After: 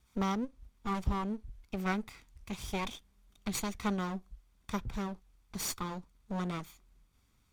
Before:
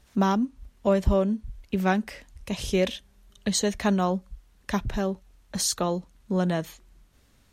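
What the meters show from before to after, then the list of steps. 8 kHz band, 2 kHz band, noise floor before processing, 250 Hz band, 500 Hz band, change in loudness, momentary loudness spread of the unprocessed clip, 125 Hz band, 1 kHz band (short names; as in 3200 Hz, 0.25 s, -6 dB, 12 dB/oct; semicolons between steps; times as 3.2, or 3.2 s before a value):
-10.5 dB, -8.0 dB, -61 dBFS, -10.0 dB, -15.5 dB, -10.5 dB, 12 LU, -9.5 dB, -8.0 dB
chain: minimum comb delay 0.86 ms; gain -8.5 dB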